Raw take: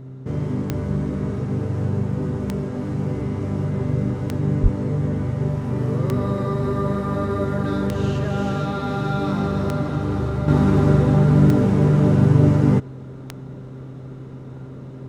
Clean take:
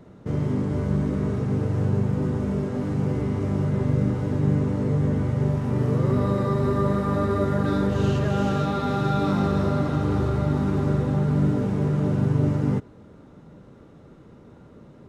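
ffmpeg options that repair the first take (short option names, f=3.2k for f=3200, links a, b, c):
-filter_complex "[0:a]adeclick=t=4,bandreject=f=130.9:t=h:w=4,bandreject=f=261.8:t=h:w=4,bandreject=f=392.7:t=h:w=4,asplit=3[a][b][c];[a]afade=t=out:st=4.62:d=0.02[d];[b]highpass=f=140:w=0.5412,highpass=f=140:w=1.3066,afade=t=in:st=4.62:d=0.02,afade=t=out:st=4.74:d=0.02[e];[c]afade=t=in:st=4.74:d=0.02[f];[d][e][f]amix=inputs=3:normalize=0,asetnsamples=n=441:p=0,asendcmd='10.48 volume volume -7dB',volume=0dB"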